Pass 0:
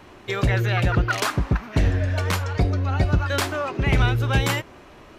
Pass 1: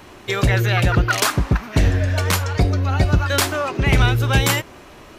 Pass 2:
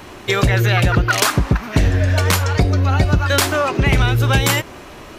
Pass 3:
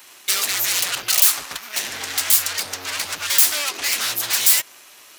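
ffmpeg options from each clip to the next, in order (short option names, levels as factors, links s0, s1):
-af "highshelf=f=5100:g=8.5,volume=1.5"
-af "acompressor=threshold=0.141:ratio=4,volume=1.88"
-af "aeval=exprs='0.841*sin(PI/2*5.62*val(0)/0.841)':c=same,aeval=exprs='0.841*(cos(1*acos(clip(val(0)/0.841,-1,1)))-cos(1*PI/2))+0.188*(cos(3*acos(clip(val(0)/0.841,-1,1)))-cos(3*PI/2))':c=same,aderivative,volume=0.422"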